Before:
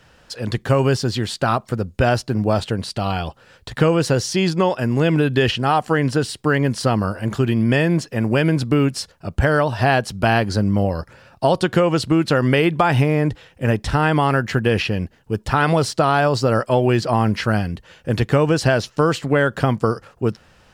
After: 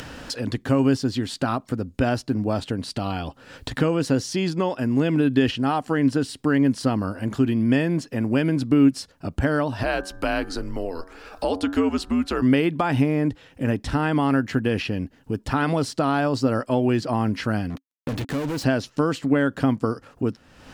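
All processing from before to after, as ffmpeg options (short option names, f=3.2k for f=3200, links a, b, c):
-filter_complex "[0:a]asettb=1/sr,asplit=3[a][b][c];[a]atrim=end=9.834[d];[b]atrim=start=9.83:end=12.42,asetpts=PTS-STARTPTS,afade=t=in:d=0.004:c=qsin,afade=t=out:st=2.586:d=0.004:c=qsin,equalizer=f=200:w=1.5:g=-15,bandreject=f=91.58:t=h:w=4,bandreject=f=183.16:t=h:w=4,bandreject=f=274.74:t=h:w=4,bandreject=f=366.32:t=h:w=4,bandreject=f=457.9:t=h:w=4,bandreject=f=549.48:t=h:w=4,bandreject=f=641.06:t=h:w=4,bandreject=f=732.64:t=h:w=4,bandreject=f=824.22:t=h:w=4,bandreject=f=915.8:t=h:w=4,bandreject=f=1.00738k:t=h:w=4,bandreject=f=1.09896k:t=h:w=4,bandreject=f=1.19054k:t=h:w=4,bandreject=f=1.28212k:t=h:w=4,bandreject=f=1.3737k:t=h:w=4,bandreject=f=1.46528k:t=h:w=4,bandreject=f=1.55686k:t=h:w=4,bandreject=f=1.64844k:t=h:w=4,bandreject=f=1.74002k:t=h:w=4,bandreject=f=1.8316k:t=h:w=4,afreqshift=-81[e];[c]atrim=start=12.416[f];[d][e]acrossfade=d=0.004:c1=hsin:c2=qsin[g];[g][f]acrossfade=d=0.004:c1=qsin:c2=hsin,asettb=1/sr,asplit=3[h][i][j];[h]atrim=end=17.704[k];[i]atrim=start=17.7:end=18.64,asetpts=PTS-STARTPTS,afade=t=in:d=0.004:c=qsin,afade=t=out:st=0.936:d=0.004:c=qsin,highshelf=f=7.8k:g=-6,acrusher=bits=4:mix=0:aa=0.5,volume=21dB,asoftclip=hard,volume=-21dB[l];[j]atrim=start=18.636[m];[k][l]acrossfade=d=0.004:c1=hsin:c2=qsin[n];[n][m]acrossfade=d=0.004:c1=qsin:c2=hsin,equalizer=f=270:t=o:w=0.34:g=13,acompressor=mode=upward:threshold=-15dB:ratio=2.5,volume=-7dB"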